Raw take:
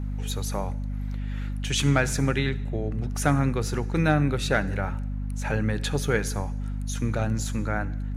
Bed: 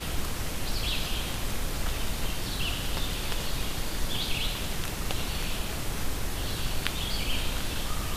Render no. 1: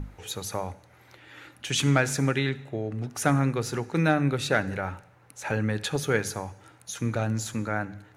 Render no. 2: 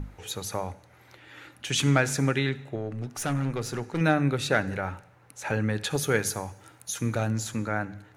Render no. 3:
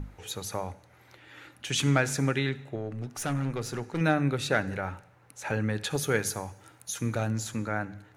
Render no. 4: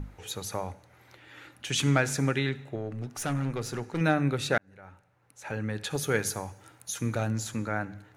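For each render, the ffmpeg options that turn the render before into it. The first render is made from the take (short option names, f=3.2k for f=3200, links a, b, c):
-af "bandreject=f=50:t=h:w=6,bandreject=f=100:t=h:w=6,bandreject=f=150:t=h:w=6,bandreject=f=200:t=h:w=6,bandreject=f=250:t=h:w=6"
-filter_complex "[0:a]asettb=1/sr,asplit=3[a][b][c];[a]atrim=end=2.754[d];[b]atrim=start=2.75:end=4.01,asetpts=PTS-STARTPTS,afade=t=in:d=0.004:c=qsin,afade=t=out:st=1.256:d=0.004:c=qsin,aeval=exprs='(tanh(14.1*val(0)+0.35)-tanh(0.35))/14.1':c=same[e];[c]atrim=start=4.006[f];[d][e]acrossfade=d=0.004:c1=hsin:c2=qsin[g];[g][f]acrossfade=d=0.004:c1=qsin:c2=hsin,asettb=1/sr,asplit=3[h][i][j];[h]atrim=end=5.904[k];[i]atrim=start=5.9:end=7.29,asetpts=PTS-STARTPTS,afade=t=in:d=0.004:c=qsin,afade=t=out:st=1.386:d=0.004:c=qsin,highshelf=f=7.9k:g=9.5[l];[j]atrim=start=7.286[m];[k][l]acrossfade=d=0.004:c1=hsin:c2=qsin[n];[n][m]acrossfade=d=0.004:c1=qsin:c2=hsin"
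-af "volume=-2dB"
-filter_complex "[0:a]asplit=2[a][b];[a]atrim=end=4.58,asetpts=PTS-STARTPTS,afade=t=out:st=4.576:d=0.004:c=hsin[c];[b]atrim=start=4.58,asetpts=PTS-STARTPTS,afade=t=in:d=1.63[d];[c][d]concat=n=2:v=0:a=1"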